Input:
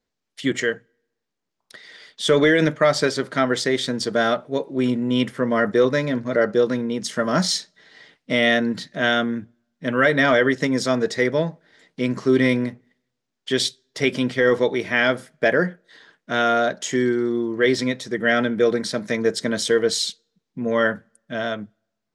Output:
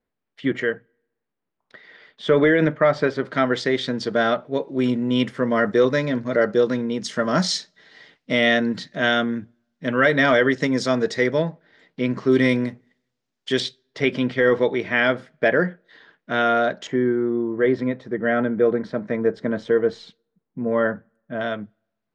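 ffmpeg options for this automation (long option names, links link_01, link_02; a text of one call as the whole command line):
ffmpeg -i in.wav -af "asetnsamples=nb_out_samples=441:pad=0,asendcmd='3.25 lowpass f 4000;4.68 lowpass f 6400;11.42 lowpass f 3700;12.32 lowpass f 8400;13.6 lowpass f 3400;16.87 lowpass f 1400;21.41 lowpass f 3200',lowpass=2200" out.wav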